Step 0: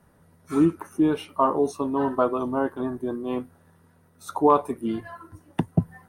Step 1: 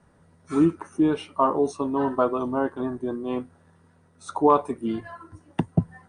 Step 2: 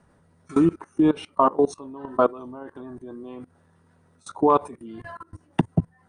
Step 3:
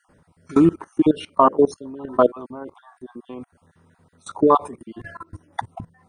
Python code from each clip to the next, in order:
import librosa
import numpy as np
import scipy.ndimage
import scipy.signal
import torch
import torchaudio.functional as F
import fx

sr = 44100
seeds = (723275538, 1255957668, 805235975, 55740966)

y1 = scipy.signal.sosfilt(scipy.signal.butter(16, 9500.0, 'lowpass', fs=sr, output='sos'), x)
y2 = fx.level_steps(y1, sr, step_db=22)
y2 = y2 * 10.0 ** (6.0 / 20.0)
y3 = fx.spec_dropout(y2, sr, seeds[0], share_pct=26)
y3 = y3 * 10.0 ** (4.0 / 20.0)